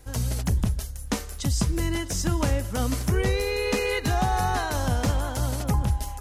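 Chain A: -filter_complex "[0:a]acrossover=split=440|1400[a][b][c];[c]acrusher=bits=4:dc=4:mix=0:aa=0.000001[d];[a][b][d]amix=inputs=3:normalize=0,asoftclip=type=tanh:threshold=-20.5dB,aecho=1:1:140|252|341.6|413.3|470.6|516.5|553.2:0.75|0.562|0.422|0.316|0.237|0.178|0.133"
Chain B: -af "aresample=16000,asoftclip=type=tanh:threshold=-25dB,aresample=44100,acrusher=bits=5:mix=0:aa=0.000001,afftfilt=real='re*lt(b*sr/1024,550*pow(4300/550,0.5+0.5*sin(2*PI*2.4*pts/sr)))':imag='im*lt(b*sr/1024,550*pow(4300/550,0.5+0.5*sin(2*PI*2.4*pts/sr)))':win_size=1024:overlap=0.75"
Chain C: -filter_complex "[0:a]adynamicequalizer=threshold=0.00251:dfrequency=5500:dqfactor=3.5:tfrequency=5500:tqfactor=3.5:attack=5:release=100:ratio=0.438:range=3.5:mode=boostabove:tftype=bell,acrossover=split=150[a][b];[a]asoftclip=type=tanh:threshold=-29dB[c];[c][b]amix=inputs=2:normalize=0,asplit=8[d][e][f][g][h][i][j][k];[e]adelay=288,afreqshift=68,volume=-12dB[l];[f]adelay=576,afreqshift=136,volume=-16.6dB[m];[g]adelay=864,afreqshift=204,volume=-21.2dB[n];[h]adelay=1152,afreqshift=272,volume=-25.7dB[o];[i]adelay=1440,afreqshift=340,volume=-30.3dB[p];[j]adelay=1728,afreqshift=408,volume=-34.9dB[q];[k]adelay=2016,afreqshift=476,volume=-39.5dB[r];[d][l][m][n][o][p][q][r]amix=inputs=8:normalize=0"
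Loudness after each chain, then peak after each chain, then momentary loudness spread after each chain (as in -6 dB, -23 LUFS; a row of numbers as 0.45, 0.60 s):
-26.0, -31.0, -27.0 LUFS; -12.5, -21.5, -11.0 dBFS; 4, 4, 6 LU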